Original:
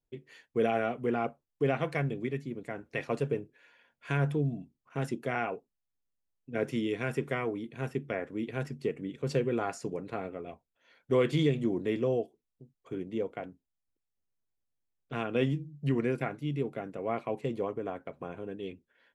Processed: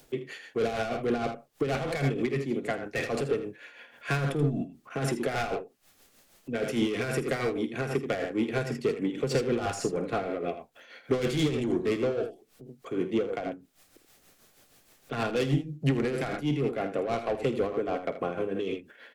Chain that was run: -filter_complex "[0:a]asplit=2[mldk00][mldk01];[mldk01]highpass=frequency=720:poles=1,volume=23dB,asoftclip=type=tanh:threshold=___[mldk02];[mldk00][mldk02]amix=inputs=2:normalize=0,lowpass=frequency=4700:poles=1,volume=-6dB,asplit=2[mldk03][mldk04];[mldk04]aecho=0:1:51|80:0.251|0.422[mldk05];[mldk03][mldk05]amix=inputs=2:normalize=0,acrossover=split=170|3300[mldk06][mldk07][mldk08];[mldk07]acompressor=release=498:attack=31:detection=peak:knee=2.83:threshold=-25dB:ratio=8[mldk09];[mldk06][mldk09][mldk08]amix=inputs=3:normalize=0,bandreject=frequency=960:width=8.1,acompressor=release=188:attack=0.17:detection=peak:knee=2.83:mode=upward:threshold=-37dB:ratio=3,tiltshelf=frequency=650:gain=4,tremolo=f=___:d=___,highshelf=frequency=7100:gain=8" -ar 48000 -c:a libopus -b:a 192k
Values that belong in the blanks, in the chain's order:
-14.5dB, 6.3, 0.53